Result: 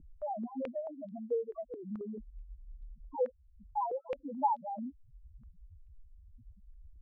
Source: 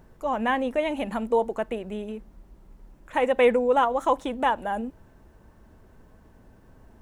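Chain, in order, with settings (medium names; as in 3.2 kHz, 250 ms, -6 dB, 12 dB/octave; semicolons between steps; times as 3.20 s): 3.29–3.78 s: room tone; loudest bins only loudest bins 1; 0.87–2.01 s: bass shelf 470 Hz -10.5 dB; compression 3:1, threshold -50 dBFS, peak gain reduction 17.5 dB; step-sequenced low-pass 4.6 Hz 290–3600 Hz; trim +7.5 dB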